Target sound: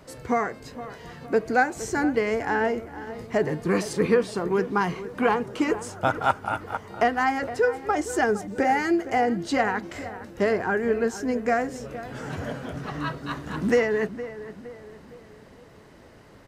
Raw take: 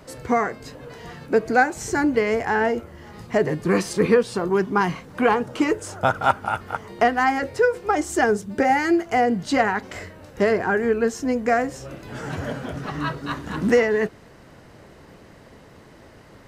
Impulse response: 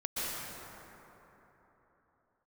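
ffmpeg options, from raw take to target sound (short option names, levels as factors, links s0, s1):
-filter_complex "[0:a]asplit=2[s0][s1];[s1]adelay=463,lowpass=f=2100:p=1,volume=0.211,asplit=2[s2][s3];[s3]adelay=463,lowpass=f=2100:p=1,volume=0.47,asplit=2[s4][s5];[s5]adelay=463,lowpass=f=2100:p=1,volume=0.47,asplit=2[s6][s7];[s7]adelay=463,lowpass=f=2100:p=1,volume=0.47,asplit=2[s8][s9];[s9]adelay=463,lowpass=f=2100:p=1,volume=0.47[s10];[s0][s2][s4][s6][s8][s10]amix=inputs=6:normalize=0,volume=0.668"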